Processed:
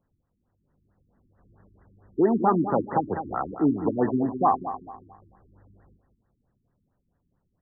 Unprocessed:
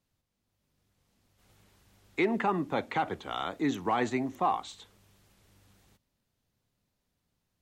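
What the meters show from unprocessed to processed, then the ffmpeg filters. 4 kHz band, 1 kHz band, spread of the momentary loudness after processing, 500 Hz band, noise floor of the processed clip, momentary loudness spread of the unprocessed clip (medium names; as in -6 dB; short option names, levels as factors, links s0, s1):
under -40 dB, +5.5 dB, 10 LU, +7.0 dB, -76 dBFS, 8 LU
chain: -filter_complex "[0:a]asplit=2[s0][s1];[s1]adelay=202,lowpass=f=3200:p=1,volume=0.299,asplit=2[s2][s3];[s3]adelay=202,lowpass=f=3200:p=1,volume=0.39,asplit=2[s4][s5];[s5]adelay=202,lowpass=f=3200:p=1,volume=0.39,asplit=2[s6][s7];[s7]adelay=202,lowpass=f=3200:p=1,volume=0.39[s8];[s0][s2][s4][s6][s8]amix=inputs=5:normalize=0,afftfilt=real='re*lt(b*sr/1024,360*pow(2000/360,0.5+0.5*sin(2*PI*4.5*pts/sr)))':imag='im*lt(b*sr/1024,360*pow(2000/360,0.5+0.5*sin(2*PI*4.5*pts/sr)))':win_size=1024:overlap=0.75,volume=2.37"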